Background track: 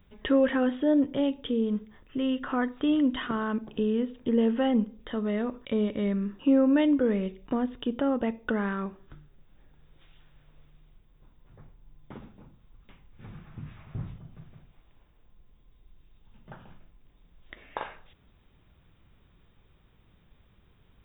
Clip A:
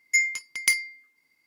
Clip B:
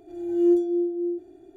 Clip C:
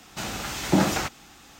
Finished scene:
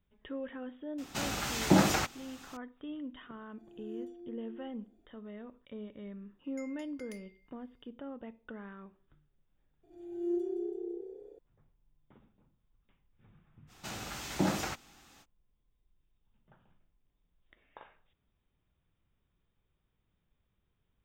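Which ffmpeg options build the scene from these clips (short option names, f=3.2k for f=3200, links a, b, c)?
-filter_complex "[3:a]asplit=2[a][b];[2:a]asplit=2[c][d];[0:a]volume=-17.5dB[e];[c]equalizer=f=370:t=o:w=0.21:g=-12[f];[1:a]acompressor=threshold=-33dB:ratio=5:attack=5.5:release=285:knee=1:detection=rms[g];[d]asplit=7[h][i][j][k][l][m][n];[i]adelay=166,afreqshift=32,volume=-7dB[o];[j]adelay=332,afreqshift=64,volume=-12.7dB[p];[k]adelay=498,afreqshift=96,volume=-18.4dB[q];[l]adelay=664,afreqshift=128,volume=-24dB[r];[m]adelay=830,afreqshift=160,volume=-29.7dB[s];[n]adelay=996,afreqshift=192,volume=-35.4dB[t];[h][o][p][q][r][s][t]amix=inputs=7:normalize=0[u];[a]atrim=end=1.59,asetpts=PTS-STARTPTS,volume=-3dB,afade=t=in:d=0.004:c=hsin,afade=t=out:st=1.586:d=0.004:c=hsin,adelay=980[v];[f]atrim=end=1.56,asetpts=PTS-STARTPTS,volume=-17.5dB,afade=t=in:d=0.004:c=hsin,afade=t=out:st=1.556:d=0.004:c=hsin,adelay=3500[w];[g]atrim=end=1.46,asetpts=PTS-STARTPTS,volume=-17.5dB,afade=t=in:d=0.004:c=hsin,afade=t=out:st=1.456:d=0.004:c=hsin,adelay=6440[x];[u]atrim=end=1.56,asetpts=PTS-STARTPTS,volume=-14dB,afade=t=in:d=0.004:c=hsin,afade=t=out:st=1.556:d=0.004:c=hsin,adelay=9830[y];[b]atrim=end=1.59,asetpts=PTS-STARTPTS,volume=-9.5dB,afade=t=in:d=0.05,afade=t=out:st=1.54:d=0.05,adelay=13670[z];[e][v][w][x][y][z]amix=inputs=6:normalize=0"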